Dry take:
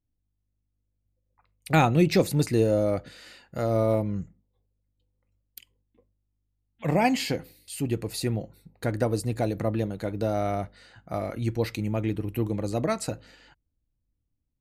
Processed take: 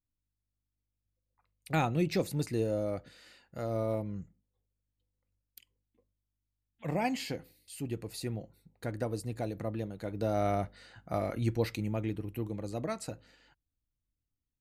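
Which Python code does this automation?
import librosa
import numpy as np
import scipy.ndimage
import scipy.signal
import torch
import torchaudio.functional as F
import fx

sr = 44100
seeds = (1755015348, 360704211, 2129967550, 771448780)

y = fx.gain(x, sr, db=fx.line((9.94, -9.0), (10.46, -2.0), (11.38, -2.0), (12.44, -9.0)))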